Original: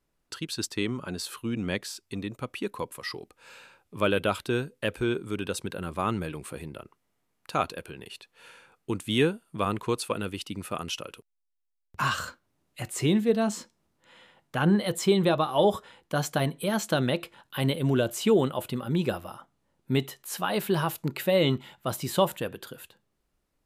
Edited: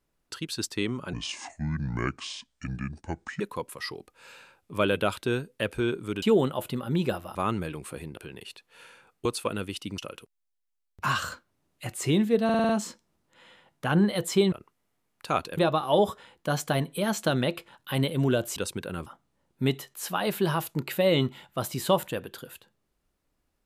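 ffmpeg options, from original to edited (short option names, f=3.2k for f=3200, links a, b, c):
-filter_complex "[0:a]asplit=17[a][b][c][d][e][f][g][h][i][j][k][l][m][n][o][p][q];[a]atrim=end=1.134[r];[b]atrim=start=1.13:end=2.63,asetpts=PTS-STARTPTS,asetrate=29106,aresample=44100,atrim=end_sample=100227,asetpts=PTS-STARTPTS[s];[c]atrim=start=2.626:end=5.452[t];[d]atrim=start=18.218:end=19.352[u];[e]atrim=start=5.948:end=6.772[v];[f]atrim=start=7.818:end=8.902[w];[g]atrim=start=9.898:end=10.632[x];[h]atrim=start=10.938:end=13.452[y];[i]atrim=start=13.398:end=13.452[z];[j]atrim=start=13.398:end=13.452[aa];[k]atrim=start=13.398:end=13.452[ab];[l]atrim=start=13.398:end=13.452[ac];[m]atrim=start=13.398:end=15.232[ad];[n]atrim=start=6.768:end=7.822[ae];[o]atrim=start=15.228:end=18.222[af];[p]atrim=start=5.448:end=5.952[ag];[q]atrim=start=19.348[ah];[r][s]acrossfade=d=0.004:c1=hsin:c2=hsin[ai];[ai][t]acrossfade=d=0.004:c1=hsin:c2=hsin[aj];[aj][u]acrossfade=d=0.004:c1=hsin:c2=hsin[ak];[ak][v]acrossfade=d=0.004:c1=hsin:c2=hsin[al];[al][w]acrossfade=d=0.004:c1=hsin:c2=hsin[am];[am][x]acrossfade=d=0.004:c1=hsin:c2=hsin[an];[an][y]acrossfade=d=0.004:c1=hsin:c2=hsin[ao];[ao][z]acrossfade=d=0.004:c1=hsin:c2=hsin[ap];[ap][aa]acrossfade=d=0.004:c1=hsin:c2=hsin[aq];[aq][ab]acrossfade=d=0.004:c1=hsin:c2=hsin[ar];[ar][ac]acrossfade=d=0.004:c1=hsin:c2=hsin[as];[as][ad]acrossfade=d=0.004:c1=hsin:c2=hsin[at];[at][ae]acrossfade=d=0.004:c1=hsin:c2=hsin[au];[au][af]acrossfade=d=0.004:c1=hsin:c2=hsin[av];[av][ag]acrossfade=d=0.004:c1=hsin:c2=hsin[aw];[aw][ah]acrossfade=d=0.004:c1=hsin:c2=hsin"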